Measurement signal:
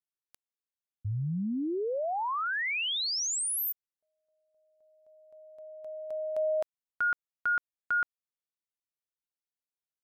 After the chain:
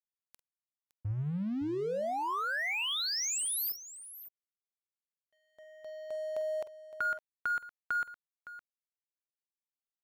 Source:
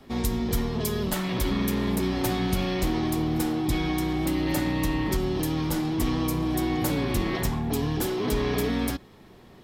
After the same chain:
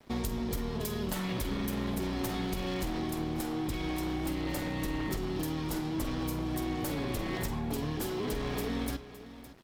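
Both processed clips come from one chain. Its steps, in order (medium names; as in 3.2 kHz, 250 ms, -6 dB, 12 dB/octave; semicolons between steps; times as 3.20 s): one-sided wavefolder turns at -21.5 dBFS; compression, threshold -30 dBFS; crossover distortion -50.5 dBFS; on a send: multi-tap echo 47/49/563 ms -15.5/-18.5/-14.5 dB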